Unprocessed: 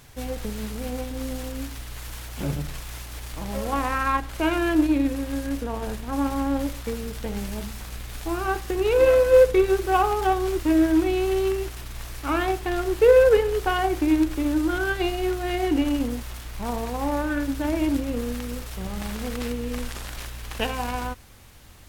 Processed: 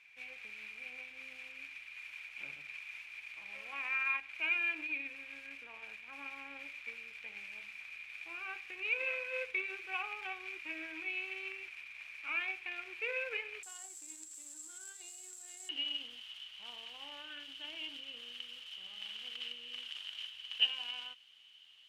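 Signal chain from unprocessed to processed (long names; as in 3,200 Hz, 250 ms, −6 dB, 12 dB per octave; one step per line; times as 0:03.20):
resonant band-pass 2,400 Hz, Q 19, from 0:13.63 7,600 Hz, from 0:15.69 3,000 Hz
level +9.5 dB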